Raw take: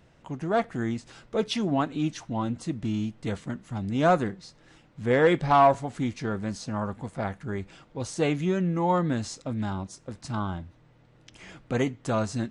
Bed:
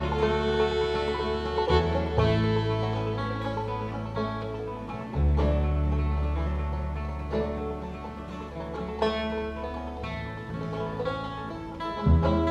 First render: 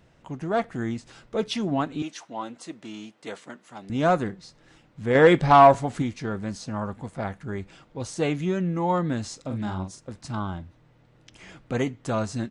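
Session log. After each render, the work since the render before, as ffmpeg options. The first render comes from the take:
ffmpeg -i in.wav -filter_complex "[0:a]asettb=1/sr,asplit=3[link_01][link_02][link_03];[link_01]atrim=end=2.024[link_04];[link_02]atrim=start=2.02:end=3.9,asetpts=PTS-STARTPTS,afade=type=in:duration=0.004:curve=qsin,afade=type=out:start_time=1.876:duration=0.004:curve=qsin,highpass=420[link_05];[link_03]atrim=start=3.896[link_06];[link_04][link_05]acrossfade=duration=0.004:curve1=hsin:curve2=qsin[link_07];[link_07][link_06]acrossfade=duration=0.004:curve1=qsin:curve2=hsin,asplit=3[link_08][link_09][link_10];[link_08]afade=type=out:start_time=9.44:duration=0.02[link_11];[link_09]asplit=2[link_12][link_13];[link_13]adelay=43,volume=-6dB[link_14];[link_12][link_14]amix=inputs=2:normalize=0,afade=type=in:start_time=9.44:duration=0.02,afade=type=out:start_time=9.99:duration=0.02[link_15];[link_10]afade=type=in:start_time=9.99:duration=0.02[link_16];[link_11][link_15][link_16]amix=inputs=3:normalize=0,asplit=3[link_17][link_18][link_19];[link_17]atrim=end=5.152[link_20];[link_18]atrim=start=5.148:end=6.022,asetpts=PTS-STARTPTS,volume=5dB[link_21];[link_19]atrim=start=6.018[link_22];[link_20][link_21]acrossfade=duration=0.004:curve1=hsin:curve2=hsin[link_23];[link_23][link_22]acrossfade=duration=0.004:curve1=hsin:curve2=hsin" out.wav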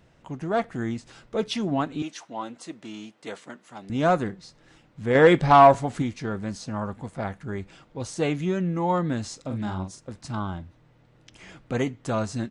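ffmpeg -i in.wav -af anull out.wav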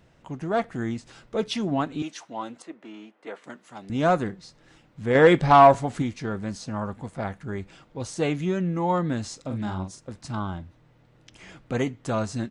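ffmpeg -i in.wav -filter_complex "[0:a]asettb=1/sr,asplit=3[link_01][link_02][link_03];[link_01]atrim=end=2.624[link_04];[link_02]atrim=start=2.62:end=3.44,asetpts=PTS-STARTPTS,afade=type=in:duration=0.004:curve=qsin,afade=type=out:start_time=0.816:duration=0.004:curve=qsin,acrossover=split=230 2600:gain=0.0708 1 0.158[link_05][link_06][link_07];[link_05][link_06][link_07]amix=inputs=3:normalize=0[link_08];[link_03]atrim=start=3.436[link_09];[link_04][link_08]acrossfade=duration=0.004:curve1=hsin:curve2=qsin[link_10];[link_10][link_09]acrossfade=duration=0.004:curve1=qsin:curve2=hsin" out.wav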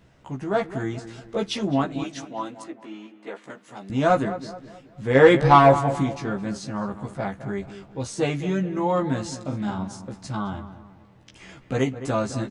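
ffmpeg -i in.wav -filter_complex "[0:a]asplit=2[link_01][link_02];[link_02]adelay=15,volume=-3dB[link_03];[link_01][link_03]amix=inputs=2:normalize=0,asplit=2[link_04][link_05];[link_05]adelay=213,lowpass=frequency=1800:poles=1,volume=-12dB,asplit=2[link_06][link_07];[link_07]adelay=213,lowpass=frequency=1800:poles=1,volume=0.43,asplit=2[link_08][link_09];[link_09]adelay=213,lowpass=frequency=1800:poles=1,volume=0.43,asplit=2[link_10][link_11];[link_11]adelay=213,lowpass=frequency=1800:poles=1,volume=0.43[link_12];[link_04][link_06][link_08][link_10][link_12]amix=inputs=5:normalize=0" out.wav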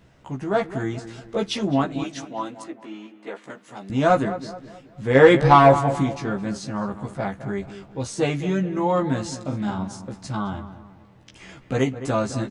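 ffmpeg -i in.wav -af "volume=1.5dB,alimiter=limit=-2dB:level=0:latency=1" out.wav

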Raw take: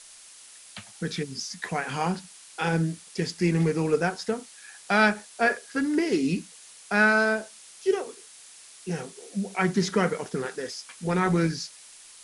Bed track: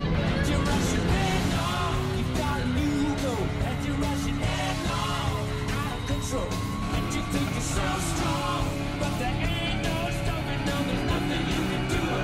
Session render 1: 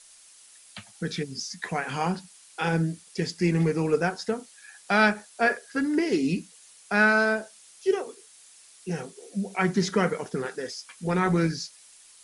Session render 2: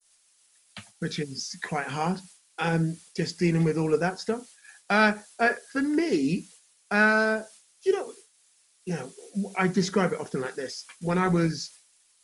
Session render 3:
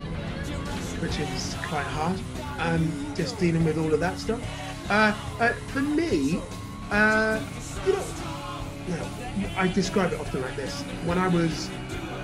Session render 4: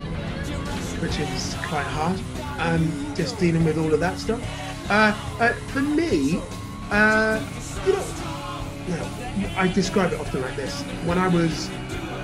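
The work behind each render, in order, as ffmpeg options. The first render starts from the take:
ffmpeg -i in.wav -af "afftdn=noise_reduction=6:noise_floor=-49" out.wav
ffmpeg -i in.wav -af "agate=range=-33dB:threshold=-44dB:ratio=3:detection=peak,adynamicequalizer=threshold=0.0141:dfrequency=2200:dqfactor=0.75:tfrequency=2200:tqfactor=0.75:attack=5:release=100:ratio=0.375:range=2:mode=cutabove:tftype=bell" out.wav
ffmpeg -i in.wav -i bed.wav -filter_complex "[1:a]volume=-7dB[link_01];[0:a][link_01]amix=inputs=2:normalize=0" out.wav
ffmpeg -i in.wav -af "volume=3dB" out.wav

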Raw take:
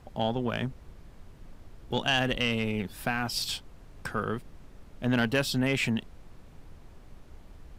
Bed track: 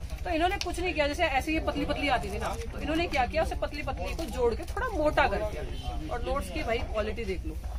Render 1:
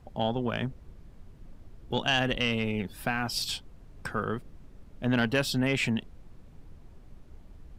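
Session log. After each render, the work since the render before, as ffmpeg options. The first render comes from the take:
ffmpeg -i in.wav -af "afftdn=noise_reduction=6:noise_floor=-52" out.wav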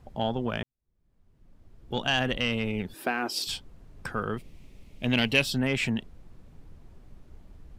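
ffmpeg -i in.wav -filter_complex "[0:a]asettb=1/sr,asplit=3[link_01][link_02][link_03];[link_01]atrim=end=2.944[link_04];[link_02]atrim=start=2.94:end=3.47,asetpts=PTS-STARTPTS,afade=type=in:duration=0.004:curve=qsin,afade=type=out:start_time=0.526:duration=0.004:curve=qsin,highpass=frequency=340:width_type=q:width=3.5[link_05];[link_03]atrim=start=3.466[link_06];[link_04][link_05]acrossfade=duration=0.004:curve1=hsin:curve2=qsin[link_07];[link_07][link_06]acrossfade=duration=0.004:curve1=qsin:curve2=hsin,asettb=1/sr,asplit=3[link_08][link_09][link_10];[link_08]atrim=end=4.374[link_11];[link_09]atrim=start=4.37:end=5.43,asetpts=PTS-STARTPTS,afade=type=in:duration=0.004:curve=qsin,afade=type=out:start_time=1.056:duration=0.004:curve=qsin,highshelf=frequency=1900:width_type=q:width=3:gain=6[link_12];[link_10]atrim=start=5.426[link_13];[link_11][link_12]acrossfade=duration=0.004:curve1=hsin:curve2=qsin[link_14];[link_14][link_13]acrossfade=duration=0.004:curve1=qsin:curve2=hsin,asplit=2[link_15][link_16];[link_15]atrim=end=0.63,asetpts=PTS-STARTPTS,afade=type=out:start_time=0.626:duration=0.004:curve=hsin[link_17];[link_16]atrim=start=0.63,asetpts=PTS-STARTPTS,afade=type=in:duration=1.43:curve=qua[link_18];[link_17][link_18]concat=n=2:v=0:a=1" out.wav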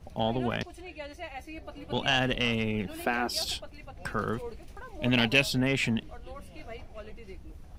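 ffmpeg -i in.wav -i bed.wav -filter_complex "[1:a]volume=-14dB[link_01];[0:a][link_01]amix=inputs=2:normalize=0" out.wav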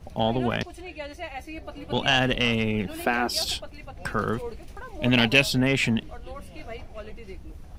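ffmpeg -i in.wav -af "volume=4.5dB" out.wav

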